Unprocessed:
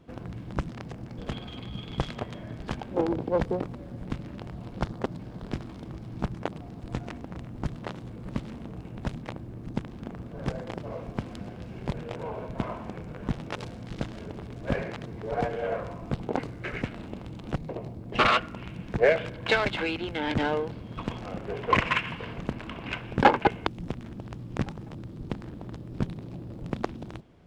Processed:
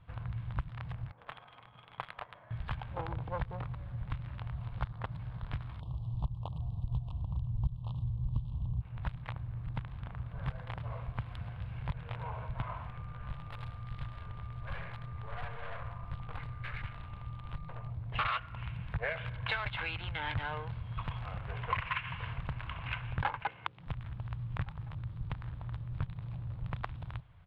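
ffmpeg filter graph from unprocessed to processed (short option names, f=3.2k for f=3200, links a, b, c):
-filter_complex "[0:a]asettb=1/sr,asplit=3[a][b][c];[a]atrim=end=1.114[d];[b]atrim=start=1.11:end=2.51,asetpts=PTS-STARTPTS,afade=t=in:d=0.004:c=qsin,afade=t=out:st=1.396:d=0.004:c=qsin,highpass=450,adynamicsmooth=sensitivity=6:basefreq=900[e];[c]atrim=start=2.506[f];[d][e]acrossfade=d=0.004:c1=hsin:c2=qsin[g];[g][f]acrossfade=d=0.004:c1=qsin:c2=hsin,asettb=1/sr,asplit=3[h][i][j];[h]atrim=end=5.804[k];[i]atrim=start=5.8:end=8.81,asetpts=PTS-STARTPTS,afade=t=in:d=0.004:c=qsin,afade=t=out:st=3.006:d=0.004:c=qsin,asubboost=boost=5.5:cutoff=230,asuperstop=centerf=1800:order=8:qfactor=0.95[l];[j]atrim=start=8.806[m];[k][l]acrossfade=d=0.004:c1=hsin:c2=qsin[n];[n][m]acrossfade=d=0.004:c1=qsin:c2=hsin,asettb=1/sr,asplit=3[o][p][q];[o]atrim=end=12.874[r];[p]atrim=start=12.87:end=17.9,asetpts=PTS-STARTPTS,afade=t=in:d=0.004:c=qsin,afade=t=out:st=5.026:d=0.004:c=qsin,aeval=exprs='(tanh(44.7*val(0)+0.55)-tanh(0.55))/44.7':c=same,aeval=exprs='val(0)+0.00224*sin(2*PI*1200*n/s)':c=same[s];[q]atrim=start=17.896[t];[r][s]acrossfade=d=0.004:c1=hsin:c2=qsin[u];[u][t]acrossfade=d=0.004:c1=qsin:c2=hsin,asettb=1/sr,asplit=3[v][w][x];[v]atrim=end=23.444[y];[w]atrim=start=23.44:end=23.87,asetpts=PTS-STARTPTS,afade=t=in:d=0.004:c=qsin,afade=t=out:st=0.426:d=0.004:c=qsin,highpass=220,lowpass=5.4k,bandreject=f=60:t=h:w=6,bandreject=f=120:t=h:w=6,bandreject=f=180:t=h:w=6,bandreject=f=240:t=h:w=6,bandreject=f=300:t=h:w=6,bandreject=f=360:t=h:w=6,bandreject=f=420:t=h:w=6,bandreject=f=480:t=h:w=6,bandreject=f=540:t=h:w=6[z];[x]atrim=start=23.866[aa];[y][z]acrossfade=d=0.004:c1=hsin:c2=qsin[ab];[ab][aa]acrossfade=d=0.004:c1=qsin:c2=hsin,firequalizer=gain_entry='entry(120,0);entry(220,-24);entry(1000,-4);entry(3700,-8);entry(6000,-29);entry(9800,-17)':delay=0.05:min_phase=1,acompressor=threshold=-36dB:ratio=3,equalizer=f=370:w=5.5:g=-8,volume=3.5dB"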